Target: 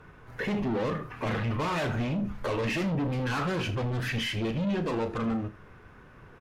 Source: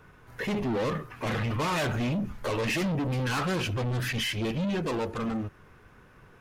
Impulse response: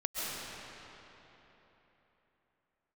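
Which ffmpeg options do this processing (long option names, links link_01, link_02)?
-filter_complex "[0:a]aemphasis=mode=reproduction:type=cd,acompressor=threshold=-32dB:ratio=2.5,asplit=2[link_01][link_02];[link_02]aecho=0:1:35|79:0.282|0.141[link_03];[link_01][link_03]amix=inputs=2:normalize=0,volume=2.5dB"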